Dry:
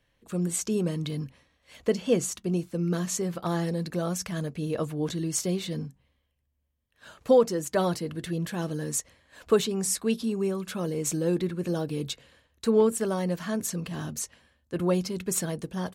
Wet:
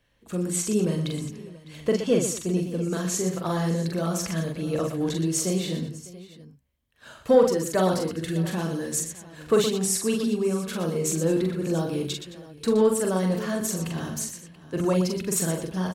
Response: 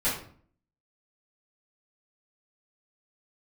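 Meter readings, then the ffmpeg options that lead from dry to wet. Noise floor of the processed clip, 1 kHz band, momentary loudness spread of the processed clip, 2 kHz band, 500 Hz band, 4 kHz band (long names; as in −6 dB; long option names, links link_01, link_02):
−51 dBFS, +3.0 dB, 12 LU, +3.5 dB, +2.5 dB, +3.5 dB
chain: -af "acontrast=90,aecho=1:1:43|120|216|604|683:0.668|0.355|0.133|0.1|0.133,volume=-6dB"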